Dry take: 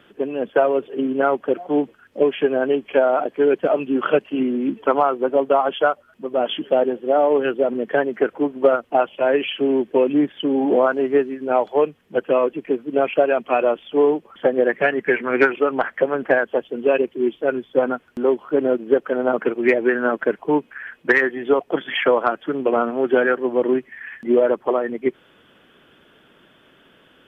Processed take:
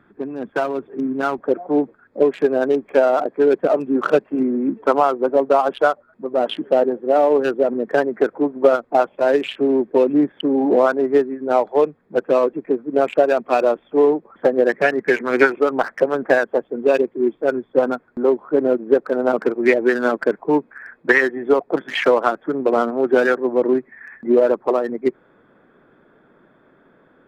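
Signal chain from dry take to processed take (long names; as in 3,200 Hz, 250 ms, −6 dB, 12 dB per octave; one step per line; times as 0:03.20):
adaptive Wiener filter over 15 samples
parametric band 520 Hz −10.5 dB 0.85 octaves, from 0:01.38 67 Hz
level +2 dB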